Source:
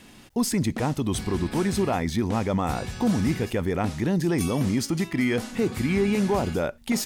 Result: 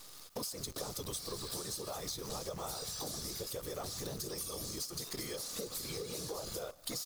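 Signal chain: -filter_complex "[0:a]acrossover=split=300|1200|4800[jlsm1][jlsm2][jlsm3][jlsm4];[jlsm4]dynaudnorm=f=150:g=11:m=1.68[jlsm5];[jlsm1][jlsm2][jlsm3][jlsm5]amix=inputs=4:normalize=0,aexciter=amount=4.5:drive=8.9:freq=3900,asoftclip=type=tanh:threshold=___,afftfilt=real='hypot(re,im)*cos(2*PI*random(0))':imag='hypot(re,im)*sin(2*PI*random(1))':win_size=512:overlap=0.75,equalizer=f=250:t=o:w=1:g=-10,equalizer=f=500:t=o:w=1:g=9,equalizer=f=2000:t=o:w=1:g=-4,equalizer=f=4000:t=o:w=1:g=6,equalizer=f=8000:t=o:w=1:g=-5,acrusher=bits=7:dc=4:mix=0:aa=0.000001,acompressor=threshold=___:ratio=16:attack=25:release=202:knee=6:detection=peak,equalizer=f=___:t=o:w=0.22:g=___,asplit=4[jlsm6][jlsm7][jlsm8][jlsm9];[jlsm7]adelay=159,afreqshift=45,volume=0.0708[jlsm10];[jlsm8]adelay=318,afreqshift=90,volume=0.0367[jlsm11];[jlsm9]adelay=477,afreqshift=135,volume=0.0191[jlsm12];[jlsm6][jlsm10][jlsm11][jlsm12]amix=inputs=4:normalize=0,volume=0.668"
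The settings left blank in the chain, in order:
0.398, 0.0158, 1200, 10.5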